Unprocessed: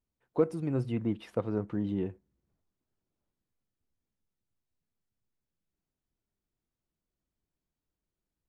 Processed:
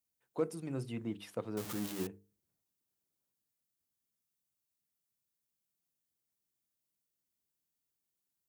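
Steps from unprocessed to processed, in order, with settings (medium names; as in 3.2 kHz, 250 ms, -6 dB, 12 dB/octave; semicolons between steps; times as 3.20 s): 1.57–2.07 s: jump at every zero crossing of -34.5 dBFS; high-pass 97 Hz; pre-emphasis filter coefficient 0.8; hum notches 50/100/150/200/250/300/350/400/450 Hz; trim +6.5 dB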